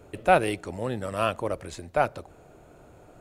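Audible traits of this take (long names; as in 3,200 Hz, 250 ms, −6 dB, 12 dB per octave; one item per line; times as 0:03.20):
background noise floor −53 dBFS
spectral slope −4.0 dB per octave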